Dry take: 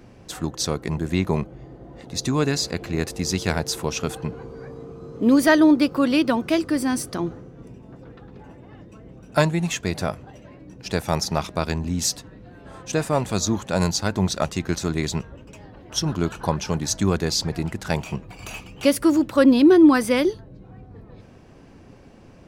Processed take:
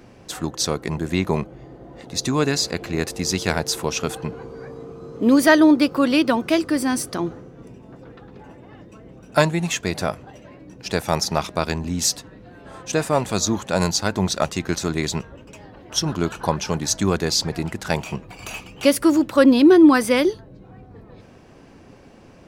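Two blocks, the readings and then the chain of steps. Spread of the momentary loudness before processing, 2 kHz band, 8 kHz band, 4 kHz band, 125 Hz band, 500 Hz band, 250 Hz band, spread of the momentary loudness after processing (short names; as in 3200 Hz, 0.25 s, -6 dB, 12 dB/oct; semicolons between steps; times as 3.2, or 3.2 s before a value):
18 LU, +3.0 dB, +3.0 dB, +3.0 dB, -1.0 dB, +2.0 dB, +1.0 dB, 18 LU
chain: low shelf 190 Hz -6 dB; gain +3 dB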